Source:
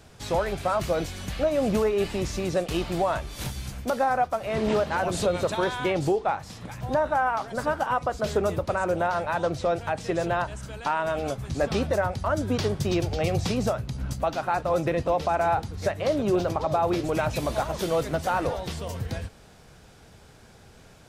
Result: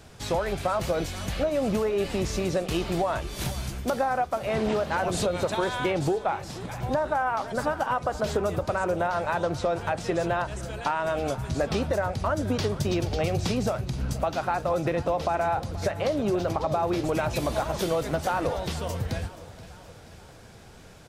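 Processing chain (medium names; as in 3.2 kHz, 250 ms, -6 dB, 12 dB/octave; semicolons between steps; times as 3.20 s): compression, threshold -24 dBFS, peak gain reduction 5.5 dB; feedback delay 478 ms, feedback 57%, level -17.5 dB; trim +2 dB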